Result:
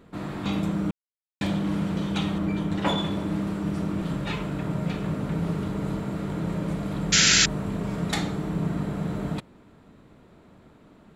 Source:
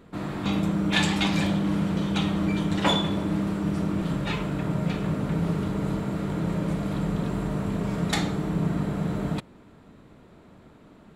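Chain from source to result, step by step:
0:00.91–0:01.41: silence
0:02.38–0:02.98: parametric band 7,000 Hz −6 dB 2.9 octaves
0:07.12–0:07.46: sound drawn into the spectrogram noise 1,300–7,500 Hz −17 dBFS
level −1.5 dB

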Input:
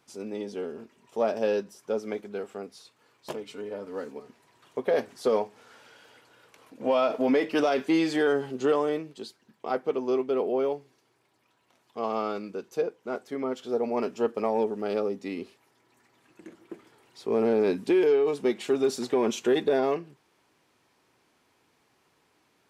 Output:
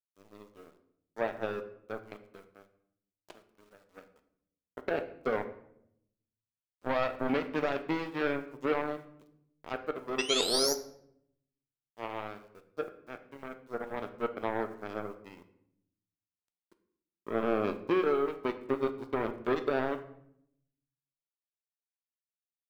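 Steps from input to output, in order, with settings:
treble cut that deepens with the level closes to 2,400 Hz, closed at −24 dBFS
in parallel at −2.5 dB: brickwall limiter −22.5 dBFS, peak gain reduction 7 dB
on the sum: sound drawn into the spectrogram rise, 0:10.18–0:10.75, 2,600–6,100 Hz −23 dBFS
power curve on the samples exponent 3
bit reduction 11 bits
on a send at −8 dB: convolution reverb RT60 0.75 s, pre-delay 3 ms

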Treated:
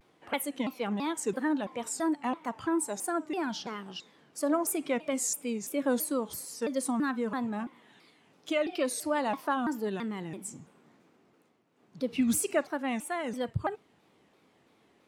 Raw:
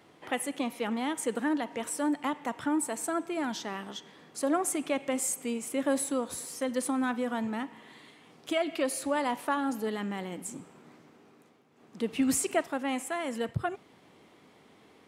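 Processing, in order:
noise reduction from a noise print of the clip's start 7 dB
pitch modulation by a square or saw wave saw down 3 Hz, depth 250 cents

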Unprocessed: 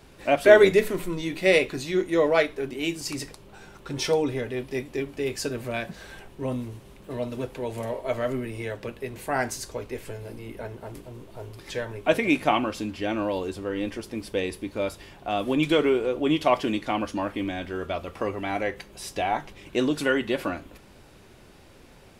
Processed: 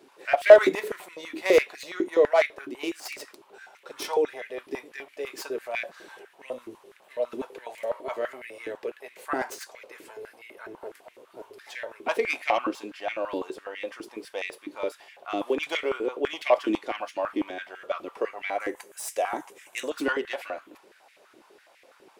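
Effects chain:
stylus tracing distortion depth 0.077 ms
0:18.60–0:19.90: high shelf with overshoot 5,800 Hz +10.5 dB, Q 1.5
high-pass on a step sequencer 12 Hz 320–2,100 Hz
level −6 dB

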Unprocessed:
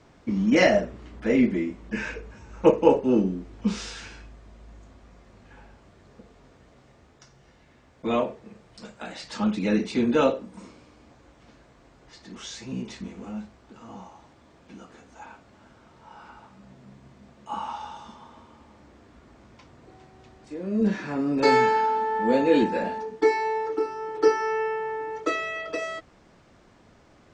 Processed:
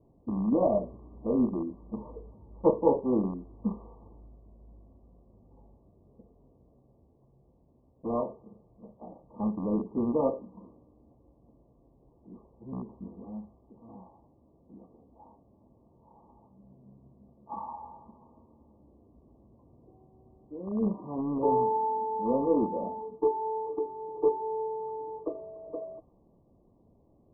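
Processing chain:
loose part that buzzes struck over −29 dBFS, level −11 dBFS
linear-phase brick-wall low-pass 1,200 Hz
low-pass that shuts in the quiet parts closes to 520 Hz, open at −19.5 dBFS
level −5.5 dB

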